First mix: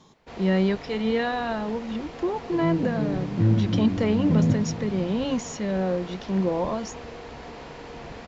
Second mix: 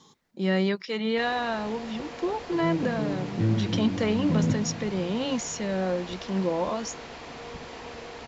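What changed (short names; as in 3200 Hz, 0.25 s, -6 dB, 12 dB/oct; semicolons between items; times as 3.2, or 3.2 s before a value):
first sound: entry +0.90 s; master: add tilt +1.5 dB/oct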